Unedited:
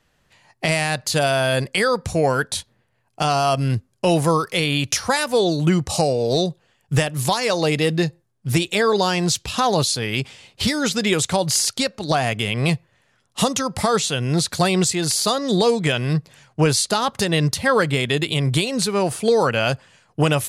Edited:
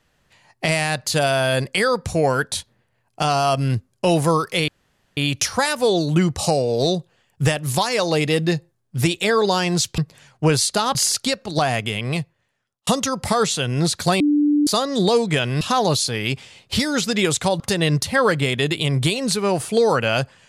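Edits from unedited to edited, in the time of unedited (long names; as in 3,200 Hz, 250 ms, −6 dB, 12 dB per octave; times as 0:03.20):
0:04.68: splice in room tone 0.49 s
0:09.49–0:11.48: swap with 0:16.14–0:17.11
0:12.23–0:13.40: fade out
0:14.73–0:15.20: beep over 294 Hz −13.5 dBFS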